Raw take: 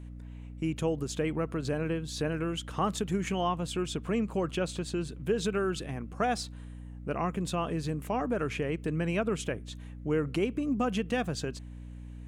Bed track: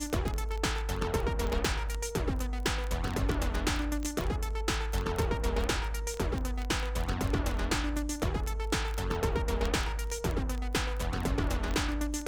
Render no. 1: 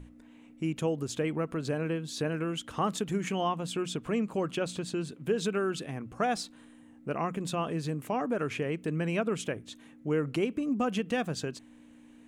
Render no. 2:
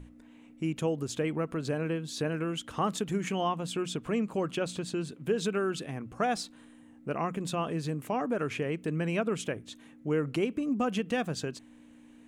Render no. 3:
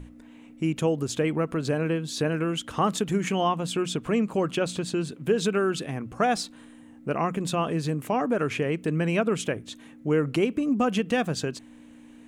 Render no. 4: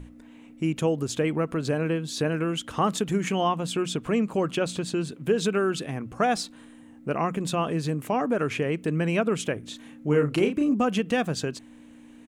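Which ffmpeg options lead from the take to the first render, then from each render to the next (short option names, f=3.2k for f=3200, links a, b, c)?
-af "bandreject=f=60:t=h:w=6,bandreject=f=120:t=h:w=6,bandreject=f=180:t=h:w=6"
-af anull
-af "volume=5.5dB"
-filter_complex "[0:a]asplit=3[a][b][c];[a]afade=t=out:st=9.62:d=0.02[d];[b]asplit=2[e][f];[f]adelay=34,volume=-5dB[g];[e][g]amix=inputs=2:normalize=0,afade=t=in:st=9.62:d=0.02,afade=t=out:st=10.73:d=0.02[h];[c]afade=t=in:st=10.73:d=0.02[i];[d][h][i]amix=inputs=3:normalize=0"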